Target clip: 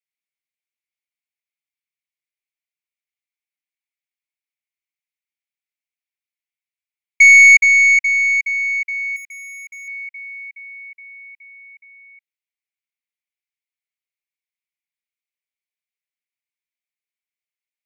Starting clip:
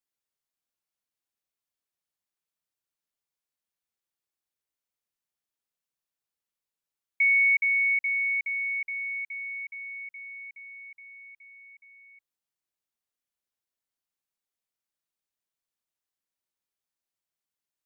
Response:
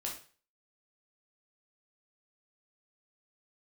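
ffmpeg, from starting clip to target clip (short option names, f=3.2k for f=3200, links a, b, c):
-filter_complex "[0:a]highpass=f=2.2k:t=q:w=6,asettb=1/sr,asplit=3[a][b][c];[a]atrim=end=9.164[d];[b]atrim=start=9.16:end=9.88,asetpts=PTS-STARTPTS,afade=t=in:d=0.004:c=qsin,afade=t=out:st=0.716:d=0.004:c=qsin,volume=26.5dB,asoftclip=hard,volume=-26.5dB[e];[c]atrim=start=9.876[f];[d][e]acrossfade=d=0.004:c1=hsin:c2=qsin[g];[g][f]acrossfade=d=0.004:c1=qsin:c2=hsin,aeval=exprs='1.88*(cos(1*acos(clip(val(0)/1.88,-1,1)))-cos(1*PI/2))+0.0422*(cos(4*acos(clip(val(0)/1.88,-1,1)))-cos(4*PI/2))+0.15*(cos(7*acos(clip(val(0)/1.88,-1,1)))-cos(7*PI/2))':c=same"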